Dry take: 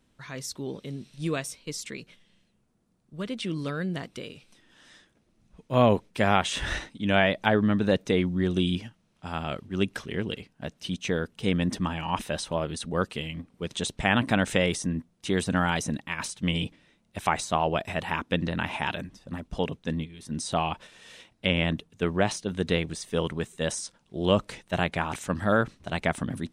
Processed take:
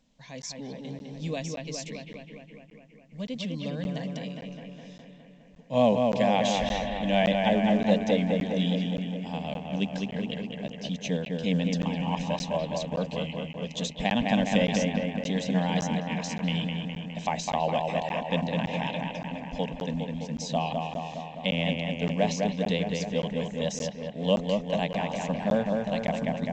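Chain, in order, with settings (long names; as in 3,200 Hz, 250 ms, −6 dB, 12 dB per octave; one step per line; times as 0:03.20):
phaser with its sweep stopped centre 360 Hz, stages 6
pitch vibrato 6.9 Hz 18 cents
on a send: bucket-brigade delay 206 ms, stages 4,096, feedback 69%, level −3.5 dB
on the sum: regular buffer underruns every 0.57 s, samples 512, zero, from 0:00.42
mu-law 128 kbit/s 16,000 Hz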